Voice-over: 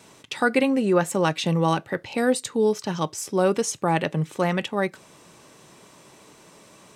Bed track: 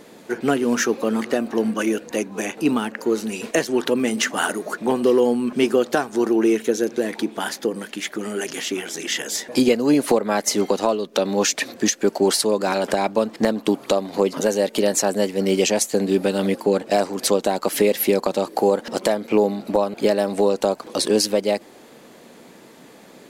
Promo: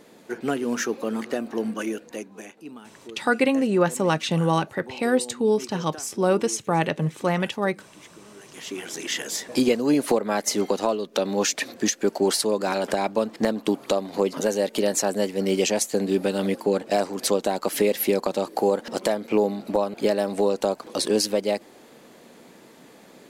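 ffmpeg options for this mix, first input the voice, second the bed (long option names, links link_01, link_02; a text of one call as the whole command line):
ffmpeg -i stem1.wav -i stem2.wav -filter_complex "[0:a]adelay=2850,volume=0dB[link_01];[1:a]volume=11.5dB,afade=type=out:start_time=1.73:duration=0.91:silence=0.177828,afade=type=in:start_time=8.46:duration=0.48:silence=0.133352[link_02];[link_01][link_02]amix=inputs=2:normalize=0" out.wav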